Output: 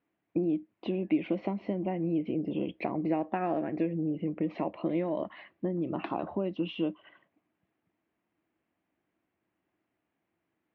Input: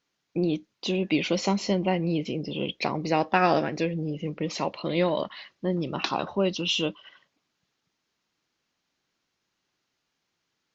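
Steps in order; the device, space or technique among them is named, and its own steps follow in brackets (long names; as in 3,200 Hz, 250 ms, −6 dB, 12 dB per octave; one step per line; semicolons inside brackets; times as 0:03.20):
bass and treble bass +7 dB, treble −3 dB
bass amplifier (downward compressor 5 to 1, threshold −28 dBFS, peak gain reduction 12 dB; loudspeaker in its box 74–2,400 Hz, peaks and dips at 140 Hz −7 dB, 320 Hz +9 dB, 670 Hz +7 dB, 1,400 Hz −4 dB)
level −2.5 dB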